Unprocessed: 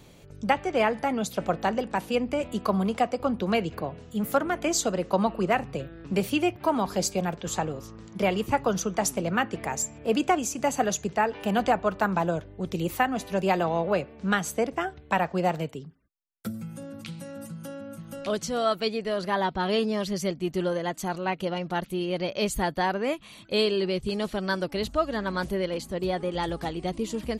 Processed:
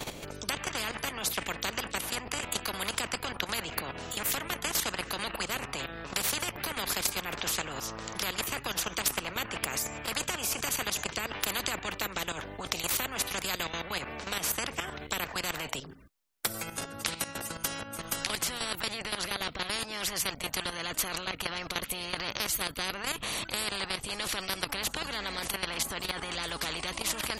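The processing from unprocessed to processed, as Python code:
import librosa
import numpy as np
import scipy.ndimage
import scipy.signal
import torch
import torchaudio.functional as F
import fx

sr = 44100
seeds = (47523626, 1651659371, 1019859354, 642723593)

y = fx.level_steps(x, sr, step_db=13)
y = fx.dynamic_eq(y, sr, hz=5000.0, q=0.84, threshold_db=-51.0, ratio=4.0, max_db=-7)
y = fx.spectral_comp(y, sr, ratio=10.0)
y = F.gain(torch.from_numpy(y), 7.0).numpy()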